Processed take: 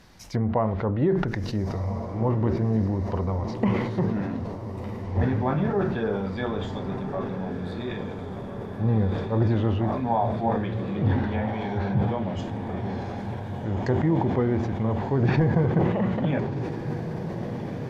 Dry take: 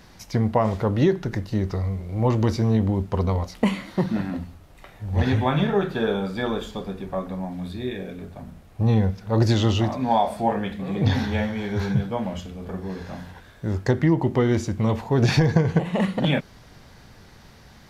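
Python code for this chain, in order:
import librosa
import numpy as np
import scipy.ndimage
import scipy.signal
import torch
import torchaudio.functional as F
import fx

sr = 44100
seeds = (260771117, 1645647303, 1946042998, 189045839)

y = fx.env_lowpass_down(x, sr, base_hz=1500.0, full_db=-18.5)
y = fx.echo_diffused(y, sr, ms=1455, feedback_pct=72, wet_db=-9)
y = fx.sustainer(y, sr, db_per_s=39.0)
y = F.gain(torch.from_numpy(y), -4.0).numpy()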